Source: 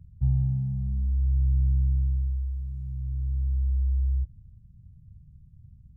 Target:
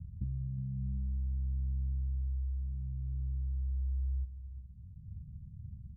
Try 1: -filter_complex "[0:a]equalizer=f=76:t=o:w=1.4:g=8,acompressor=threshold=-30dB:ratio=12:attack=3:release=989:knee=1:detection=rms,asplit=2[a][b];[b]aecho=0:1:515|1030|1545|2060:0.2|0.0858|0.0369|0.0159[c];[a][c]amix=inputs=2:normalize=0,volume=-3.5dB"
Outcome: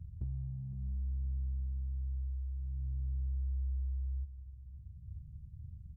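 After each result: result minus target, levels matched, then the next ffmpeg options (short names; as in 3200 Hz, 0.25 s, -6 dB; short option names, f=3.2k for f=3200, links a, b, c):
echo 0.148 s late; 250 Hz band -4.5 dB
-filter_complex "[0:a]equalizer=f=76:t=o:w=1.4:g=8,acompressor=threshold=-30dB:ratio=12:attack=3:release=989:knee=1:detection=rms,asplit=2[a][b];[b]aecho=0:1:367|734|1101|1468:0.2|0.0858|0.0369|0.0159[c];[a][c]amix=inputs=2:normalize=0,volume=-3.5dB"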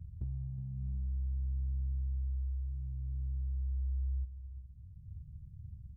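250 Hz band -4.5 dB
-filter_complex "[0:a]equalizer=f=76:t=o:w=1.4:g=8,acompressor=threshold=-30dB:ratio=12:attack=3:release=989:knee=1:detection=rms,lowpass=f=220:t=q:w=2.7,asplit=2[a][b];[b]aecho=0:1:367|734|1101|1468:0.2|0.0858|0.0369|0.0159[c];[a][c]amix=inputs=2:normalize=0,volume=-3.5dB"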